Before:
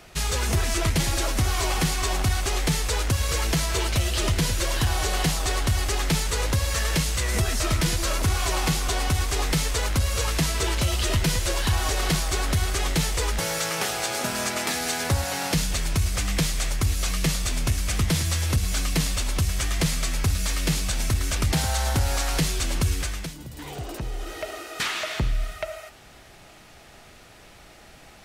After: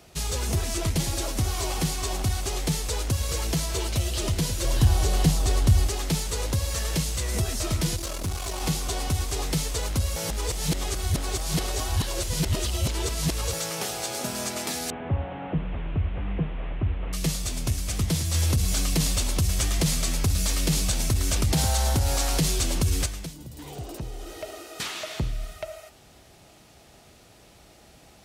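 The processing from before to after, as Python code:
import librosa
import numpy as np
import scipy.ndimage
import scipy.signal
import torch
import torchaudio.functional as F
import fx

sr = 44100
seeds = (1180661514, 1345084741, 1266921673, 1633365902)

y = fx.low_shelf(x, sr, hz=280.0, db=8.5, at=(4.64, 5.87))
y = fx.tube_stage(y, sr, drive_db=21.0, bias=0.5, at=(7.96, 8.61))
y = fx.delta_mod(y, sr, bps=16000, step_db=-36.5, at=(14.9, 17.13))
y = fx.env_flatten(y, sr, amount_pct=70, at=(18.34, 23.06))
y = fx.edit(y, sr, fx.reverse_span(start_s=10.16, length_s=3.37), tone=tone)
y = scipy.signal.sosfilt(scipy.signal.butter(2, 44.0, 'highpass', fs=sr, output='sos'), y)
y = fx.peak_eq(y, sr, hz=1700.0, db=-7.5, octaves=1.7)
y = y * 10.0 ** (-1.5 / 20.0)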